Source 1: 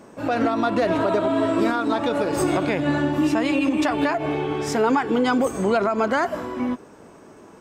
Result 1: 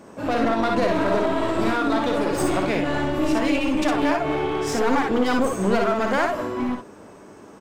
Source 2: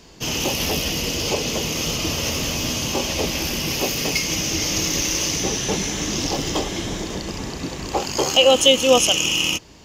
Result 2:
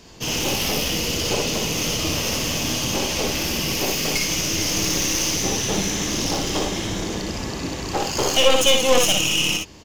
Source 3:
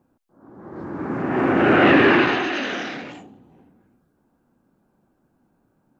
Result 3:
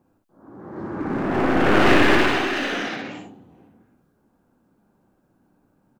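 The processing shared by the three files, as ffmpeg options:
-af "aeval=exprs='clip(val(0),-1,0.0596)':channel_layout=same,aecho=1:1:57|67:0.596|0.376"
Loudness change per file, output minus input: −0.5, −0.5, −1.5 LU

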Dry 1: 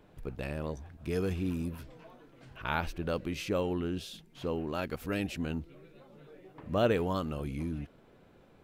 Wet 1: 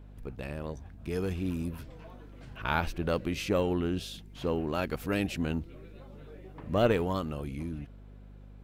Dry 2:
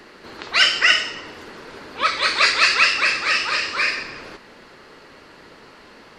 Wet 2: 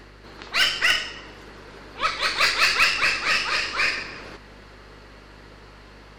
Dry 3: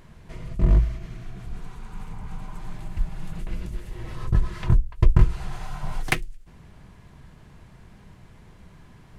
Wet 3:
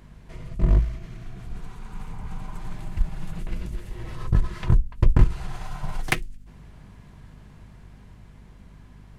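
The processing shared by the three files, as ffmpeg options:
-af "aeval=exprs='0.891*(cos(1*acos(clip(val(0)/0.891,-1,1)))-cos(1*PI/2))+0.141*(cos(2*acos(clip(val(0)/0.891,-1,1)))-cos(2*PI/2))+0.112*(cos(5*acos(clip(val(0)/0.891,-1,1)))-cos(5*PI/2))+0.0631*(cos(7*acos(clip(val(0)/0.891,-1,1)))-cos(7*PI/2))+0.0562*(cos(8*acos(clip(val(0)/0.891,-1,1)))-cos(8*PI/2))':channel_layout=same,dynaudnorm=framelen=110:gausssize=31:maxgain=5dB,aeval=exprs='val(0)+0.00562*(sin(2*PI*50*n/s)+sin(2*PI*2*50*n/s)/2+sin(2*PI*3*50*n/s)/3+sin(2*PI*4*50*n/s)/4+sin(2*PI*5*50*n/s)/5)':channel_layout=same,volume=-3dB"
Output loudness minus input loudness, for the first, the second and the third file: +2.0, −3.5, −1.0 LU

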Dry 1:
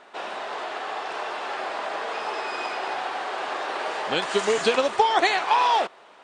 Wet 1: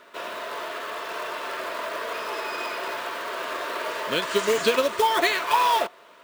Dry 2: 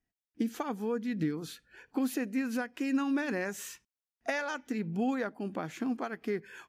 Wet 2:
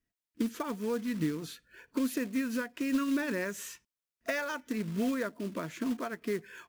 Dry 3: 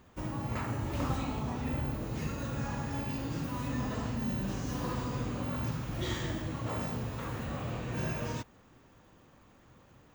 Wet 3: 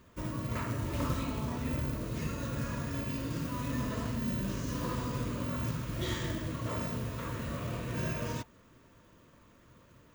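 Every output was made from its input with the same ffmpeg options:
-af "acrusher=bits=4:mode=log:mix=0:aa=0.000001,asuperstop=centerf=790:order=20:qfactor=5.4"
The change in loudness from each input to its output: −0.5, 0.0, 0.0 LU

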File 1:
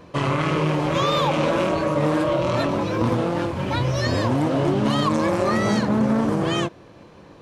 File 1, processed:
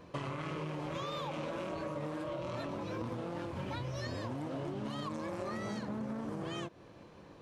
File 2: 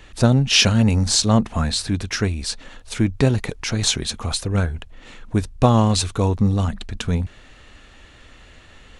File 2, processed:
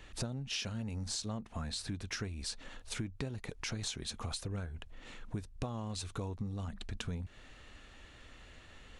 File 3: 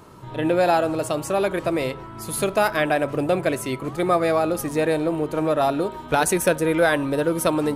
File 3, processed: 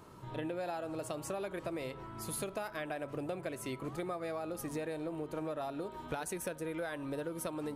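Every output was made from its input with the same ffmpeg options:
-af "acompressor=threshold=-27dB:ratio=10,volume=-8.5dB"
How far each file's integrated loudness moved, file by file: −18.0, −20.5, −17.5 LU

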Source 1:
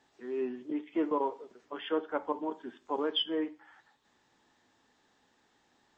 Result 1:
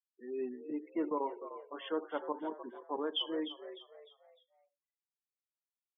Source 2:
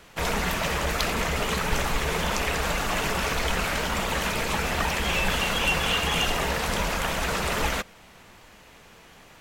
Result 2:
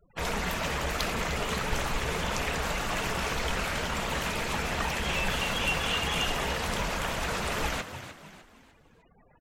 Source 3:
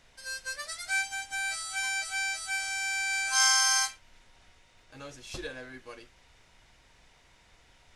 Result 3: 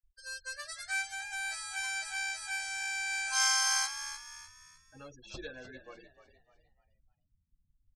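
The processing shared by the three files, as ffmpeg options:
-filter_complex "[0:a]afftfilt=real='re*gte(hypot(re,im),0.00794)':imag='im*gte(hypot(re,im),0.00794)':win_size=1024:overlap=0.75,asplit=5[link_01][link_02][link_03][link_04][link_05];[link_02]adelay=302,afreqshift=67,volume=-11.5dB[link_06];[link_03]adelay=604,afreqshift=134,volume=-19.9dB[link_07];[link_04]adelay=906,afreqshift=201,volume=-28.3dB[link_08];[link_05]adelay=1208,afreqshift=268,volume=-36.7dB[link_09];[link_01][link_06][link_07][link_08][link_09]amix=inputs=5:normalize=0,volume=-4.5dB"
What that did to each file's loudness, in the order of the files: −4.5, −4.5, −4.0 LU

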